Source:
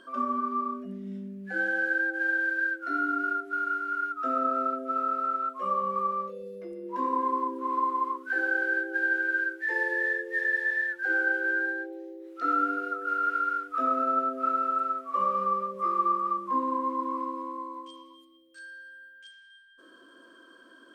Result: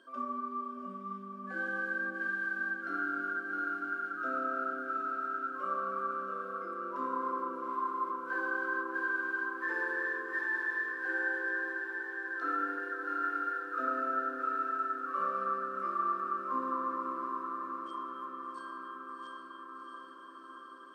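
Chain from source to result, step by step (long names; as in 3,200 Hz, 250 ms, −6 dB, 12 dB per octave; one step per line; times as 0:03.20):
high-pass filter 180 Hz
on a send: feedback delay with all-pass diffusion 699 ms, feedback 71%, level −5.5 dB
on the sum: level −8 dB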